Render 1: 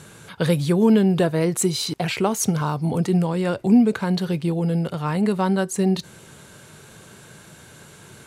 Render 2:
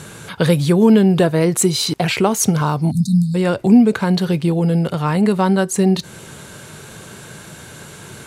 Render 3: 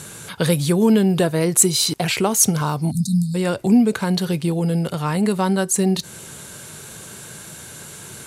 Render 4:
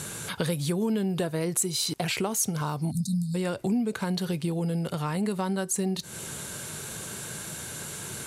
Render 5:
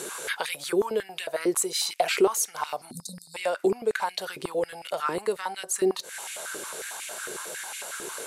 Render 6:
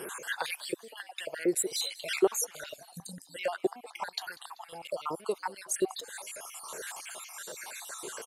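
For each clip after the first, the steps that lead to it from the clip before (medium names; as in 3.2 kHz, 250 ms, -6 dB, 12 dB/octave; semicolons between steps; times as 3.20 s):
spectral selection erased 2.91–3.35 s, 240–3600 Hz; in parallel at -2 dB: compression, threshold -28 dBFS, peak gain reduction 15.5 dB; on the sum: trim +3.5 dB
peaking EQ 11 kHz +9.5 dB 1.9 oct; trim -4 dB
compression 3:1, threshold -28 dBFS, peak gain reduction 14 dB
step-sequenced high-pass 11 Hz 380–2300 Hz
random holes in the spectrogram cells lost 53%; frequency-shifting echo 193 ms, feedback 49%, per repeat +100 Hz, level -20.5 dB; trim -2.5 dB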